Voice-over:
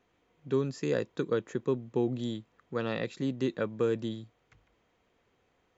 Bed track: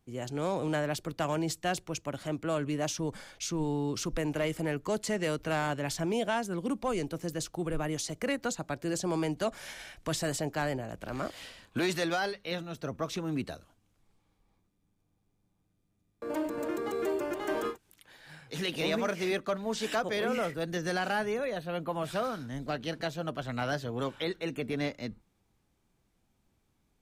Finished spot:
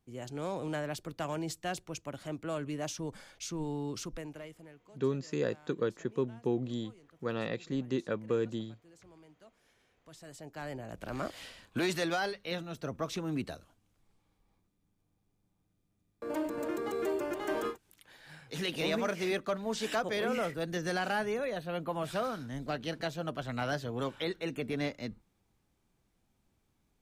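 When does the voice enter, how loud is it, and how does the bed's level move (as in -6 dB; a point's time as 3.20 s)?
4.50 s, -2.5 dB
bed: 3.98 s -5 dB
4.94 s -27.5 dB
9.88 s -27.5 dB
10.99 s -1.5 dB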